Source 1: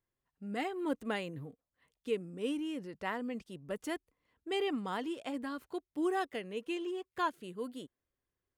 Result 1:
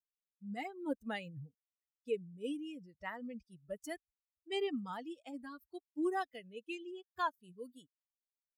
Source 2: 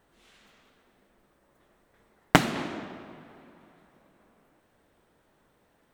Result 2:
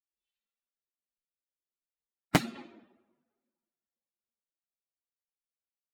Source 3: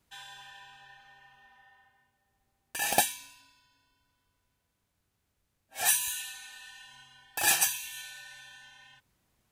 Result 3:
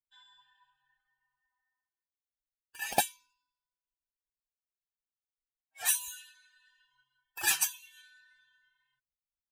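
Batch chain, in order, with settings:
spectral dynamics exaggerated over time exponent 2
gain into a clipping stage and back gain 13 dB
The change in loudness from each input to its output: −4.0, −4.0, −2.5 LU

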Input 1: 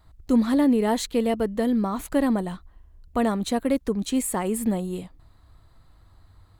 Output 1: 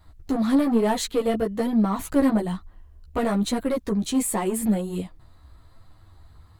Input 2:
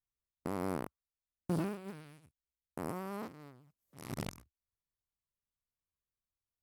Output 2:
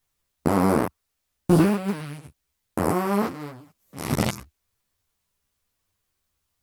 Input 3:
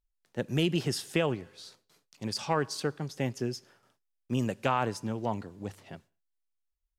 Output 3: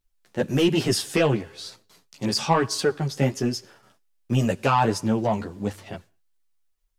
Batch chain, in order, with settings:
soft clipping −19.5 dBFS
multi-voice chorus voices 2, 1.1 Hz, delay 12 ms, depth 3 ms
loudness normalisation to −24 LKFS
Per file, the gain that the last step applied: +6.0, +20.5, +13.0 decibels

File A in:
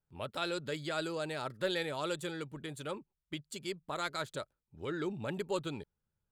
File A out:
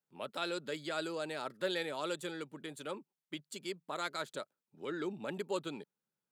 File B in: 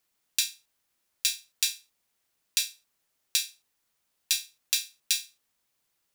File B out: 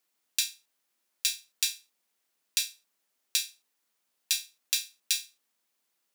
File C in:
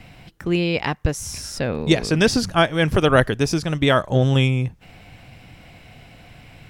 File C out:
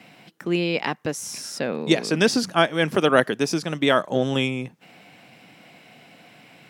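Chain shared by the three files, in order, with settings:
high-pass filter 180 Hz 24 dB per octave
level −1.5 dB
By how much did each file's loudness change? −1.5, −1.5, −2.5 LU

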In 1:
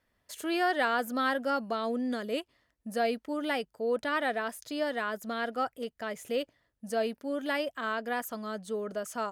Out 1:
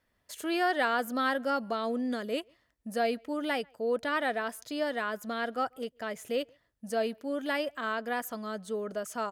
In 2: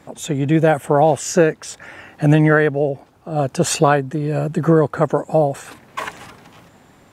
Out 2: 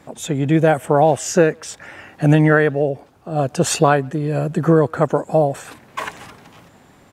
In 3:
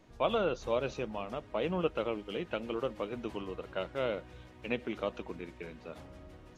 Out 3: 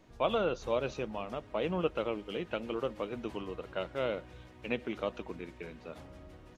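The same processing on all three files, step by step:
far-end echo of a speakerphone 140 ms, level −30 dB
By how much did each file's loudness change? 0.0, 0.0, 0.0 LU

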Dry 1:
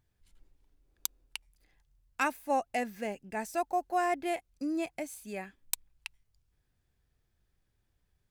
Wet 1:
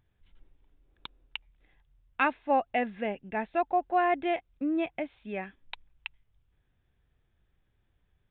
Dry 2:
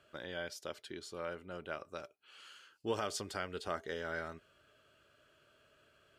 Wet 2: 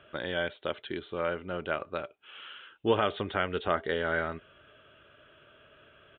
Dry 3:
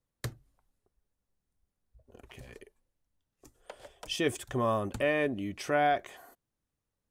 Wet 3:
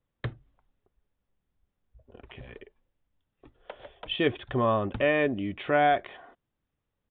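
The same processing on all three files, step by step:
downsampling to 8,000 Hz
normalise the peak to −12 dBFS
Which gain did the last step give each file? +4.0, +10.5, +4.0 decibels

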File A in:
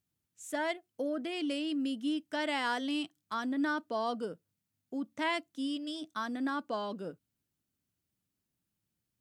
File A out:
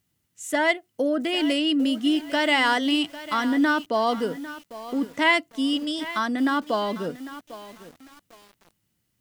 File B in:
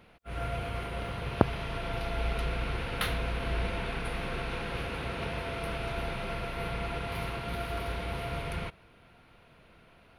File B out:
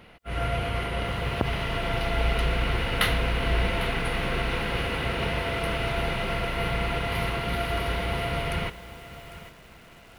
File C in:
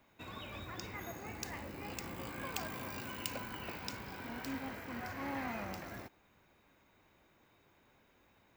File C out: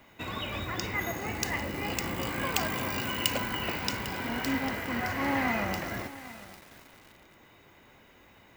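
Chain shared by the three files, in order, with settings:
hollow resonant body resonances 2,000/2,900 Hz, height 9 dB, ringing for 35 ms
boost into a limiter +11.5 dB
feedback echo at a low word length 800 ms, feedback 35%, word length 6 bits, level −14 dB
normalise the peak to −6 dBFS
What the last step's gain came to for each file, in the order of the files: −1.0, −5.0, −0.5 decibels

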